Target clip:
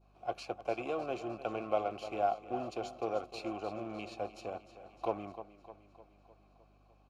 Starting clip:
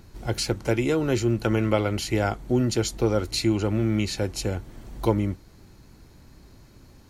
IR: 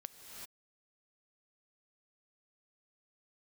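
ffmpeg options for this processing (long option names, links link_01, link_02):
-filter_complex "[0:a]aecho=1:1:304|608|912|1216|1520|1824|2128:0.251|0.148|0.0874|0.0516|0.0304|0.018|0.0106,asplit=2[link_01][link_02];[link_02]acrusher=bits=3:mix=0:aa=0.5,volume=-7dB[link_03];[link_01][link_03]amix=inputs=2:normalize=0,adynamicequalizer=threshold=0.0126:dfrequency=1900:dqfactor=0.71:tfrequency=1900:tqfactor=0.71:attack=5:release=100:ratio=0.375:range=2:mode=cutabove:tftype=bell,asplit=3[link_04][link_05][link_06];[link_04]bandpass=frequency=730:width_type=q:width=8,volume=0dB[link_07];[link_05]bandpass=frequency=1090:width_type=q:width=8,volume=-6dB[link_08];[link_06]bandpass=frequency=2440:width_type=q:width=8,volume=-9dB[link_09];[link_07][link_08][link_09]amix=inputs=3:normalize=0,aeval=exprs='val(0)+0.000562*(sin(2*PI*50*n/s)+sin(2*PI*2*50*n/s)/2+sin(2*PI*3*50*n/s)/3+sin(2*PI*4*50*n/s)/4+sin(2*PI*5*50*n/s)/5)':channel_layout=same"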